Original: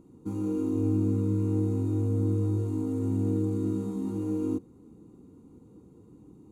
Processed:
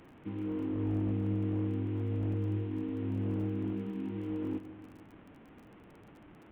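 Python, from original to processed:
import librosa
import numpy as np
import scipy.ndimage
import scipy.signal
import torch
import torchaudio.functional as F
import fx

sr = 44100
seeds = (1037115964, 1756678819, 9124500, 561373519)

y = fx.delta_mod(x, sr, bps=16000, step_db=-43.5)
y = fx.dmg_crackle(y, sr, seeds[0], per_s=28.0, level_db=-43.0)
y = fx.echo_filtered(y, sr, ms=147, feedback_pct=67, hz=2000.0, wet_db=-15)
y = y * librosa.db_to_amplitude(-6.0)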